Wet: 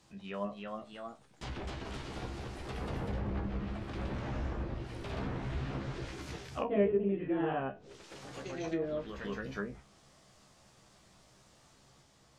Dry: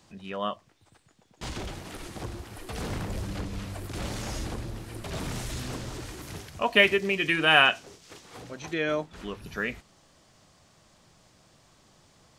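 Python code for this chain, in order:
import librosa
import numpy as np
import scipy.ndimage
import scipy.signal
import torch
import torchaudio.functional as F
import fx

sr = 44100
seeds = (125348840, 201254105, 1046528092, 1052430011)

y = fx.env_lowpass_down(x, sr, base_hz=480.0, full_db=-26.0)
y = fx.echo_pitch(y, sr, ms=339, semitones=1, count=2, db_per_echo=-3.0)
y = fx.comb_fb(y, sr, f0_hz=67.0, decay_s=0.17, harmonics='all', damping=0.0, mix_pct=90)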